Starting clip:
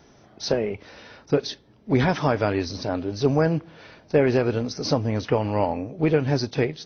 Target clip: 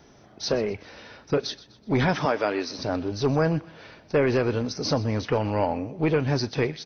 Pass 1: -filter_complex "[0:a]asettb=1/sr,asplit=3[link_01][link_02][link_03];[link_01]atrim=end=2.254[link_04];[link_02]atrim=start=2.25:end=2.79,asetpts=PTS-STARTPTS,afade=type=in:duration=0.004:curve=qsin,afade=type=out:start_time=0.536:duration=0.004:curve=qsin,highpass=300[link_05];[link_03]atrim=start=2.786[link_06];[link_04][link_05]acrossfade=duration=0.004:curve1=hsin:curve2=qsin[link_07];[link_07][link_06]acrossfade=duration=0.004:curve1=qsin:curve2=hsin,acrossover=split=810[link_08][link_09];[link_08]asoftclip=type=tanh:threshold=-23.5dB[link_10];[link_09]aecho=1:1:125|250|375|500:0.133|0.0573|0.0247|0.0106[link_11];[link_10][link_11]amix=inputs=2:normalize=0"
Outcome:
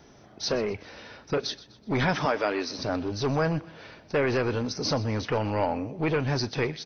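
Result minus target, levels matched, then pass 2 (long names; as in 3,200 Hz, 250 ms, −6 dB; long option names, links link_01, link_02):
soft clipping: distortion +6 dB
-filter_complex "[0:a]asettb=1/sr,asplit=3[link_01][link_02][link_03];[link_01]atrim=end=2.254[link_04];[link_02]atrim=start=2.25:end=2.79,asetpts=PTS-STARTPTS,afade=type=in:duration=0.004:curve=qsin,afade=type=out:start_time=0.536:duration=0.004:curve=qsin,highpass=300[link_05];[link_03]atrim=start=2.786[link_06];[link_04][link_05]acrossfade=duration=0.004:curve1=hsin:curve2=qsin[link_07];[link_07][link_06]acrossfade=duration=0.004:curve1=qsin:curve2=hsin,acrossover=split=810[link_08][link_09];[link_08]asoftclip=type=tanh:threshold=-16.5dB[link_10];[link_09]aecho=1:1:125|250|375|500:0.133|0.0573|0.0247|0.0106[link_11];[link_10][link_11]amix=inputs=2:normalize=0"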